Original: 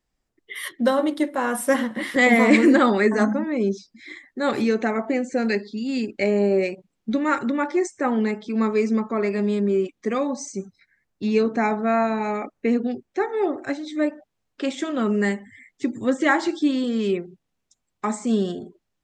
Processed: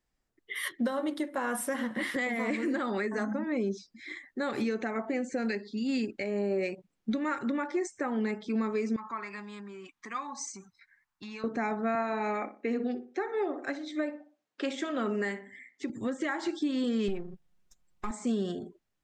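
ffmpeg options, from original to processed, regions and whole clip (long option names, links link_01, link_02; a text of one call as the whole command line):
ffmpeg -i in.wav -filter_complex "[0:a]asettb=1/sr,asplit=3[link_01][link_02][link_03];[link_01]atrim=end=8.964[link_04];[link_02]atrim=start=8.96:end=11.44,asetpts=PTS-STARTPTS,afade=type=in:duration=0.004:curve=qsin,afade=type=out:start_time=2.476:duration=0.004:curve=qsin,acompressor=threshold=-27dB:ratio=4:attack=3.2:release=140:knee=1:detection=peak,lowshelf=frequency=720:width_type=q:width=3:gain=-9.5[link_05];[link_03]atrim=start=11.436[link_06];[link_04][link_05]acrossfade=duration=0.004:curve1=hsin:curve2=qsin[link_07];[link_07][link_06]acrossfade=duration=0.004:curve1=qsin:curve2=hsin,asettb=1/sr,asplit=3[link_08][link_09][link_10];[link_08]atrim=end=11.954[link_11];[link_09]atrim=start=11.95:end=15.9,asetpts=PTS-STARTPTS,afade=type=in:duration=0.004:curve=qsin,afade=type=out:start_time=3.946:duration=0.004:curve=qsin,highpass=240,lowpass=7700,asplit=2[link_12][link_13];[link_13]adelay=61,lowpass=frequency=1600:poles=1,volume=-11dB,asplit=2[link_14][link_15];[link_15]adelay=61,lowpass=frequency=1600:poles=1,volume=0.35,asplit=2[link_16][link_17];[link_17]adelay=61,lowpass=frequency=1600:poles=1,volume=0.35,asplit=2[link_18][link_19];[link_19]adelay=61,lowpass=frequency=1600:poles=1,volume=0.35[link_20];[link_12][link_14][link_16][link_18][link_20]amix=inputs=5:normalize=0,atrim=end_sample=174195[link_21];[link_10]atrim=start=15.896[link_22];[link_11][link_21]acrossfade=duration=0.004:curve1=hsin:curve2=qsin[link_23];[link_23][link_22]acrossfade=duration=0.004:curve1=qsin:curve2=hsin,asettb=1/sr,asplit=3[link_24][link_25][link_26];[link_24]atrim=end=17.084[link_27];[link_25]atrim=start=17.08:end=18.11,asetpts=PTS-STARTPTS,afade=type=in:duration=0.004:curve=qsin,afade=type=out:start_time=1.026:duration=0.004:curve=qsin,aeval=exprs='if(lt(val(0),0),0.447*val(0),val(0))':channel_layout=same,lowshelf=frequency=130:gain=11,aecho=1:1:5.6:0.84,atrim=end_sample=45423[link_28];[link_26]atrim=start=18.106[link_29];[link_27][link_28]acrossfade=duration=0.004:curve1=hsin:curve2=qsin[link_30];[link_30][link_29]acrossfade=duration=0.004:curve1=qsin:curve2=hsin,equalizer=frequency=1600:width=1.4:gain=2.5,acompressor=threshold=-19dB:ratio=6,alimiter=limit=-18dB:level=0:latency=1:release=270,volume=-4dB" out.wav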